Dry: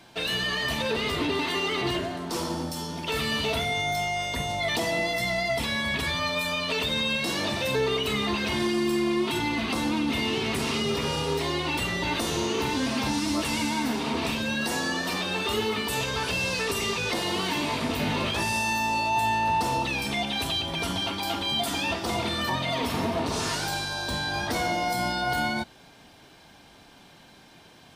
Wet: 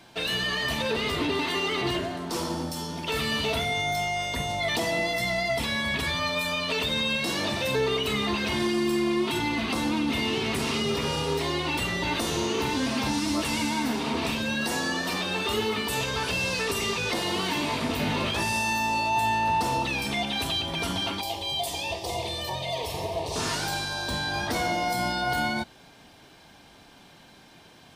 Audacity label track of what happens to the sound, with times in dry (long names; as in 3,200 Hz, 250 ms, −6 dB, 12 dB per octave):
21.210000	23.360000	phaser with its sweep stopped centre 590 Hz, stages 4